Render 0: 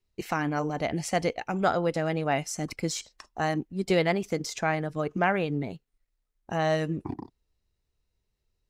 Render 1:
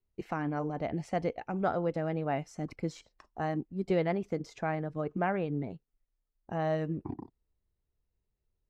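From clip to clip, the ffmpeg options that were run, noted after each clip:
-af "lowpass=f=1k:p=1,volume=-3.5dB"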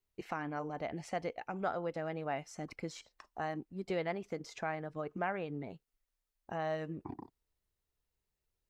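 -filter_complex "[0:a]lowshelf=f=490:g=-10.5,asplit=2[a][b];[b]acompressor=threshold=-43dB:ratio=6,volume=2.5dB[c];[a][c]amix=inputs=2:normalize=0,volume=-4dB"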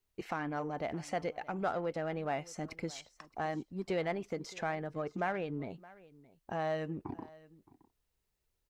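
-filter_complex "[0:a]asplit=2[a][b];[b]asoftclip=type=tanh:threshold=-39dB,volume=-6dB[c];[a][c]amix=inputs=2:normalize=0,aecho=1:1:619:0.0891"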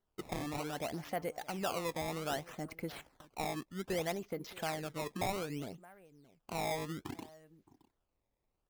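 -af "acrusher=samples=17:mix=1:aa=0.000001:lfo=1:lforange=27.2:lforate=0.63,volume=-2dB"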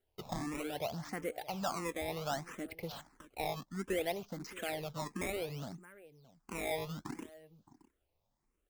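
-filter_complex "[0:a]asplit=2[a][b];[b]aeval=exprs='(mod(119*val(0)+1,2)-1)/119':c=same,volume=-10.5dB[c];[a][c]amix=inputs=2:normalize=0,asplit=2[d][e];[e]afreqshift=1.5[f];[d][f]amix=inputs=2:normalize=1,volume=2.5dB"

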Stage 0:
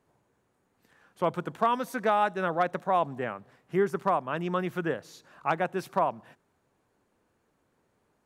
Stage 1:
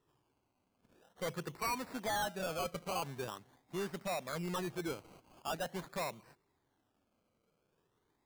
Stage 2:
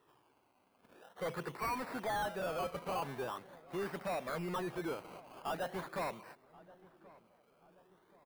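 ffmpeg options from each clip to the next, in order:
-af "afftfilt=real='re*pow(10,9/40*sin(2*PI*(0.65*log(max(b,1)*sr/1024/100)/log(2)-(-0.63)*(pts-256)/sr)))':imag='im*pow(10,9/40*sin(2*PI*(0.65*log(max(b,1)*sr/1024/100)/log(2)-(-0.63)*(pts-256)/sr)))':win_size=1024:overlap=0.75,acrusher=samples=19:mix=1:aa=0.000001:lfo=1:lforange=11.4:lforate=0.44,asoftclip=type=tanh:threshold=-24.5dB,volume=-7.5dB"
-filter_complex "[0:a]asplit=2[a][b];[b]highpass=f=720:p=1,volume=18dB,asoftclip=type=tanh:threshold=-31.5dB[c];[a][c]amix=inputs=2:normalize=0,lowpass=f=1.9k:p=1,volume=-6dB,aexciter=amount=2.4:drive=5.8:freq=9.2k,asplit=2[d][e];[e]adelay=1079,lowpass=f=1.3k:p=1,volume=-20dB,asplit=2[f][g];[g]adelay=1079,lowpass=f=1.3k:p=1,volume=0.5,asplit=2[h][i];[i]adelay=1079,lowpass=f=1.3k:p=1,volume=0.5,asplit=2[j][k];[k]adelay=1079,lowpass=f=1.3k:p=1,volume=0.5[l];[d][f][h][j][l]amix=inputs=5:normalize=0"

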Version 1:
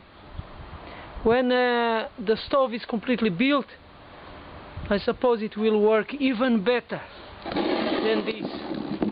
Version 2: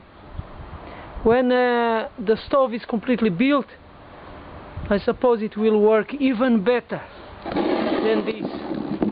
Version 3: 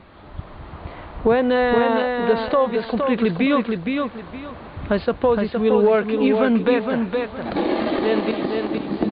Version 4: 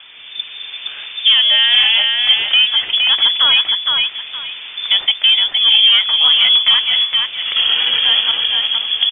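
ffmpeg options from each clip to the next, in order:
-af "highshelf=f=3.1k:g=-11,volume=4dB"
-af "aecho=1:1:465|930|1395|1860:0.596|0.161|0.0434|0.0117"
-af "bandreject=f=710:w=15,asoftclip=type=tanh:threshold=-10.5dB,lowpass=f=3.1k:t=q:w=0.5098,lowpass=f=3.1k:t=q:w=0.6013,lowpass=f=3.1k:t=q:w=0.9,lowpass=f=3.1k:t=q:w=2.563,afreqshift=-3600,volume=7dB"

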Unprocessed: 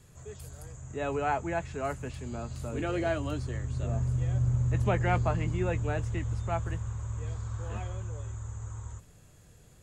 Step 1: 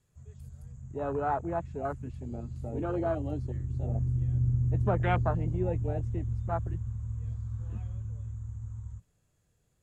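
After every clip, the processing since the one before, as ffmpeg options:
-af "afwtdn=0.0251"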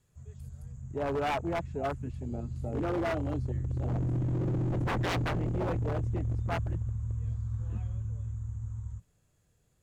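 -af "aeval=exprs='0.0447*(abs(mod(val(0)/0.0447+3,4)-2)-1)':c=same,volume=2dB"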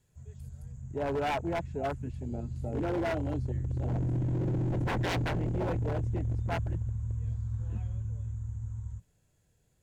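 -af "bandreject=f=1.2k:w=7.2"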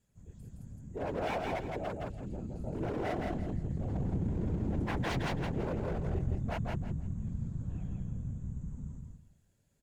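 -af "afftfilt=real='hypot(re,im)*cos(2*PI*random(0))':imag='hypot(re,im)*sin(2*PI*random(1))':win_size=512:overlap=0.75,aecho=1:1:166|332|498|664:0.708|0.177|0.0442|0.0111,volume=1dB"

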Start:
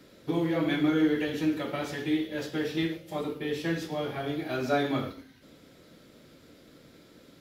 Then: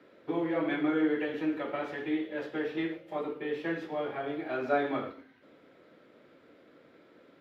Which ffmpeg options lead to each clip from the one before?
-filter_complex "[0:a]highpass=73,acrossover=split=290 2700:gain=0.224 1 0.0794[a][b][c];[a][b][c]amix=inputs=3:normalize=0"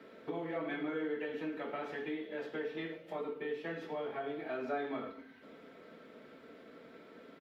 -af "aecho=1:1:4.5:0.47,acompressor=threshold=-47dB:ratio=2,volume=3dB"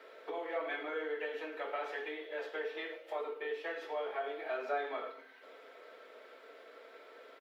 -af "highpass=f=450:w=0.5412,highpass=f=450:w=1.3066,volume=3dB"

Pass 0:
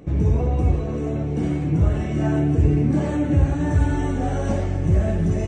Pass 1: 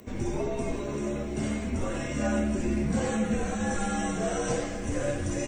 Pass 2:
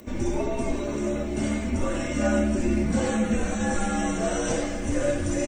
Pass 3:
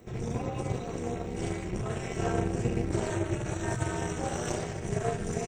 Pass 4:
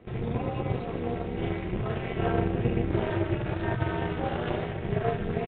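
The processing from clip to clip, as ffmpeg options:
-af "afreqshift=-79,aemphasis=mode=production:type=bsi"
-af "aecho=1:1:3.4:0.41,volume=3dB"
-af "aeval=exprs='(tanh(6.31*val(0)+0.7)-tanh(0.7))/6.31':c=same,aeval=exprs='val(0)*sin(2*PI*120*n/s)':c=same"
-filter_complex "[0:a]asplit=2[a][b];[b]acrusher=bits=6:mix=0:aa=0.000001,volume=-8.5dB[c];[a][c]amix=inputs=2:normalize=0,aresample=8000,aresample=44100"

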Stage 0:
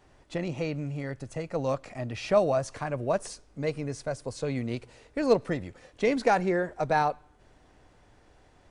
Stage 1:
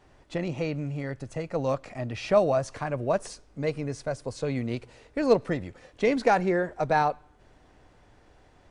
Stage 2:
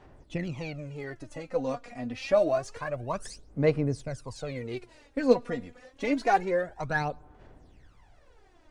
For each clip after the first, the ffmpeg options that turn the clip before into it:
-af "highshelf=f=8.3k:g=-6.5,volume=1.5dB"
-af "aphaser=in_gain=1:out_gain=1:delay=4.2:decay=0.71:speed=0.27:type=sinusoidal,volume=-5.5dB"

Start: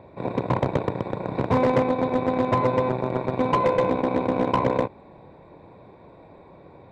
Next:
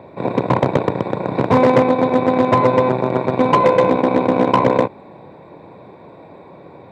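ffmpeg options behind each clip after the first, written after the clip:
-af "highpass=120,volume=8dB"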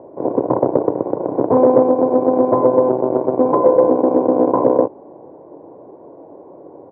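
-af "firequalizer=gain_entry='entry(200,0);entry(290,13);entry(670,10);entry(2600,-26)':delay=0.05:min_phase=1,volume=-9dB"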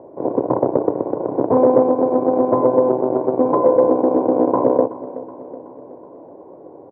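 -af "aecho=1:1:374|748|1122|1496|1870:0.158|0.0903|0.0515|0.0294|0.0167,volume=-1.5dB"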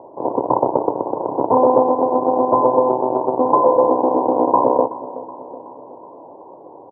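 -af "lowpass=f=930:t=q:w=4.9,volume=-4dB"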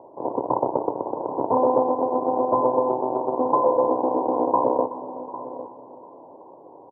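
-af "aecho=1:1:803:0.188,volume=-6dB"

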